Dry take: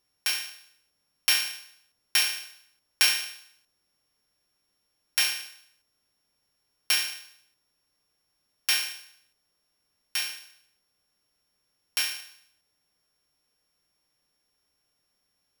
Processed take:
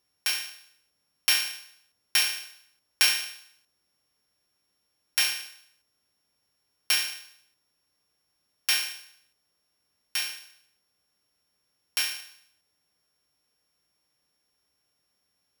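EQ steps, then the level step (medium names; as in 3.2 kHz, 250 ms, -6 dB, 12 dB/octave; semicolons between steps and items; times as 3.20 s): high-pass 41 Hz; 0.0 dB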